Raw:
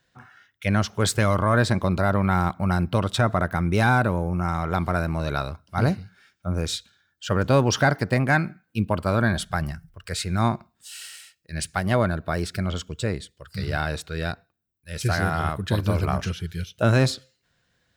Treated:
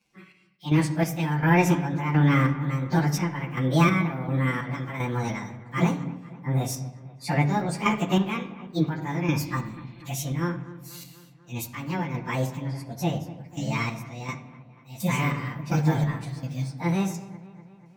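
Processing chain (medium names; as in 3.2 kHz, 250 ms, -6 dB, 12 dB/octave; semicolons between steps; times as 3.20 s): frequency-domain pitch shifter +7 st; spectral replace 9.46–9.99 s, 2–4.3 kHz before; square tremolo 1.4 Hz, depth 60%, duty 45%; feedback echo behind a low-pass 244 ms, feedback 61%, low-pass 2.3 kHz, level -17.5 dB; on a send at -6 dB: reverberation RT60 0.85 s, pre-delay 6 ms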